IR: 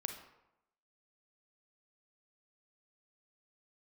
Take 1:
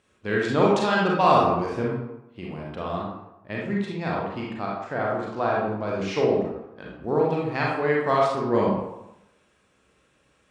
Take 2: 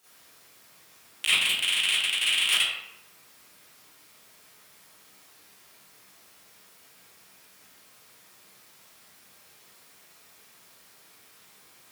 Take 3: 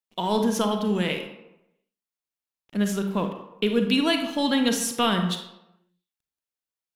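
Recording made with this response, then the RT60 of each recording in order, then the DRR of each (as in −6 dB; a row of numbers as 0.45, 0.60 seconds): 3; 0.90, 0.90, 0.90 seconds; −4.0, −13.5, 5.0 decibels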